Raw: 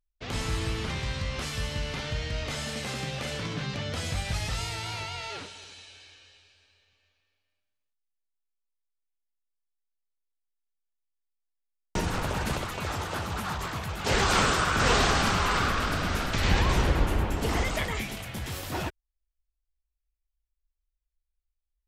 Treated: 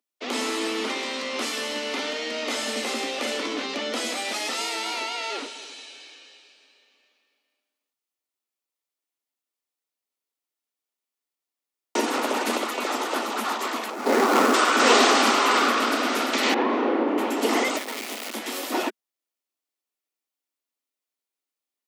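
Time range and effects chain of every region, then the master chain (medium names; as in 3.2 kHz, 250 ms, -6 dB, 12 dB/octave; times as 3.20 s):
13.90–14.54 s: median filter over 15 samples + tone controls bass +6 dB, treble +1 dB
16.54–17.18 s: tape spacing loss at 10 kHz 44 dB + doubling 34 ms -2 dB
17.77–18.35 s: treble shelf 8.3 kHz -11 dB + compression 12:1, threshold -35 dBFS + word length cut 6-bit, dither none
whole clip: steep high-pass 230 Hz 96 dB/octave; bass shelf 330 Hz +5 dB; band-stop 1.6 kHz, Q 11; trim +6.5 dB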